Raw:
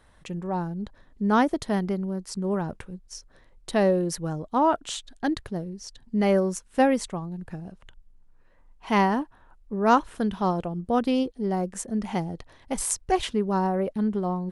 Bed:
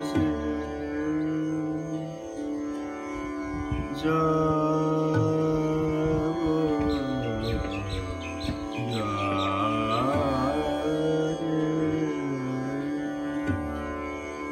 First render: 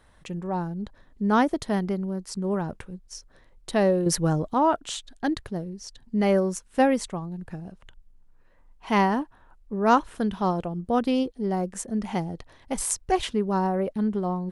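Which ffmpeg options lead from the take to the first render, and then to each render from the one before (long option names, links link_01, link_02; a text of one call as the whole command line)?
ffmpeg -i in.wav -filter_complex "[0:a]asettb=1/sr,asplit=3[link_01][link_02][link_03];[link_01]atrim=end=4.064[link_04];[link_02]atrim=start=4.06:end=4.54,asetpts=PTS-STARTPTS,afade=type=in:duration=0.004:curve=qsin,afade=type=out:start_time=0.476:duration=0.004:curve=qsin,acontrast=85[link_05];[link_03]atrim=start=4.536[link_06];[link_04][link_05]acrossfade=duration=0.004:curve1=hsin:curve2=qsin[link_07];[link_07][link_06]acrossfade=duration=0.004:curve1=qsin:curve2=hsin" out.wav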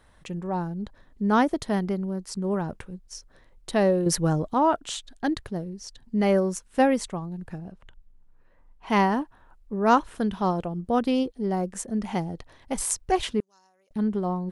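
ffmpeg -i in.wav -filter_complex "[0:a]asettb=1/sr,asplit=3[link_01][link_02][link_03];[link_01]atrim=end=7.584[link_04];[link_02]atrim=start=7.58:end=8.9,asetpts=PTS-STARTPTS,afade=type=in:duration=0.004:curve=qsin,afade=type=out:start_time=1.316:duration=0.004:curve=qsin,highshelf=frequency=4100:gain=-8[link_05];[link_03]atrim=start=8.896[link_06];[link_04][link_05]acrossfade=duration=0.004:curve1=hsin:curve2=qsin[link_07];[link_07][link_06]acrossfade=duration=0.004:curve1=qsin:curve2=hsin,asettb=1/sr,asplit=3[link_08][link_09][link_10];[link_08]atrim=end=13.404[link_11];[link_09]atrim=start=13.4:end=13.91,asetpts=PTS-STARTPTS,afade=type=in:duration=0.004:curve=qsin,afade=type=out:start_time=0.506:duration=0.004:curve=qsin,bandpass=frequency=6500:width_type=q:width=7.3[link_12];[link_10]atrim=start=13.906[link_13];[link_11][link_12]acrossfade=duration=0.004:curve1=hsin:curve2=qsin[link_14];[link_14][link_13]acrossfade=duration=0.004:curve1=qsin:curve2=hsin" out.wav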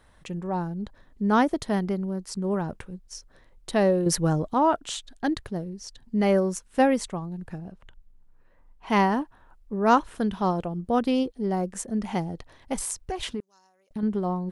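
ffmpeg -i in.wav -filter_complex "[0:a]asettb=1/sr,asplit=3[link_01][link_02][link_03];[link_01]atrim=end=12.774[link_04];[link_02]atrim=start=12.77:end=14.03,asetpts=PTS-STARTPTS,afade=type=in:duration=0.004:curve=qsin,afade=type=out:start_time=1.256:duration=0.004:curve=qsin,acompressor=threshold=-27dB:ratio=6:attack=3.2:release=140:knee=1:detection=peak[link_05];[link_03]atrim=start=14.026[link_06];[link_04][link_05]acrossfade=duration=0.004:curve1=hsin:curve2=qsin[link_07];[link_07][link_06]acrossfade=duration=0.004:curve1=qsin:curve2=hsin" out.wav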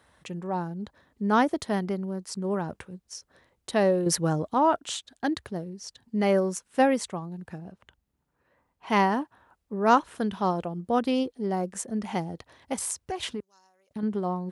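ffmpeg -i in.wav -af "highpass=frequency=60:width=0.5412,highpass=frequency=60:width=1.3066,lowshelf=frequency=230:gain=-5" out.wav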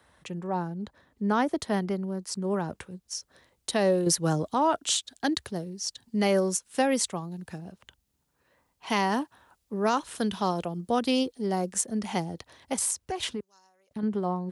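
ffmpeg -i in.wav -filter_complex "[0:a]acrossover=split=380|490|3200[link_01][link_02][link_03][link_04];[link_04]dynaudnorm=framelen=570:gausssize=11:maxgain=11dB[link_05];[link_01][link_02][link_03][link_05]amix=inputs=4:normalize=0,alimiter=limit=-14dB:level=0:latency=1:release=130" out.wav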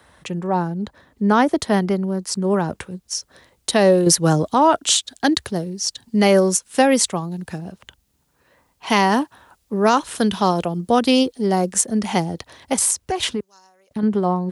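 ffmpeg -i in.wav -af "volume=9.5dB" out.wav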